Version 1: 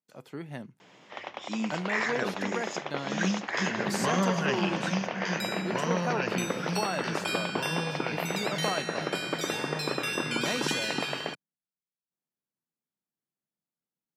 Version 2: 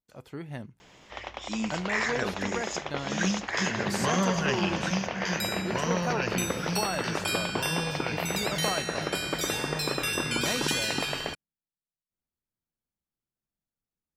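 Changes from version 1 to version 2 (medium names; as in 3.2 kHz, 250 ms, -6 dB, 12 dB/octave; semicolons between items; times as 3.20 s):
background: remove low-pass 4 kHz 6 dB/octave; master: remove high-pass 140 Hz 24 dB/octave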